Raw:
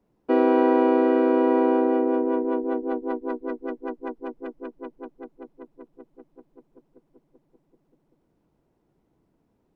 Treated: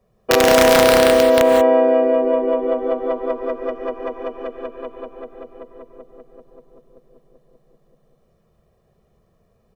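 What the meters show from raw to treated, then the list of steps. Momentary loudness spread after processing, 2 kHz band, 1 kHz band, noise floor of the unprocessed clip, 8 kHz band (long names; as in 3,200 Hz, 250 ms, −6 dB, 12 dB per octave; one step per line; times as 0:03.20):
19 LU, +14.0 dB, +6.0 dB, −70 dBFS, can't be measured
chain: comb filter 1.7 ms, depth 90%
wrap-around overflow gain 10.5 dB
reverb whose tail is shaped and stops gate 210 ms rising, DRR 3 dB
level +5 dB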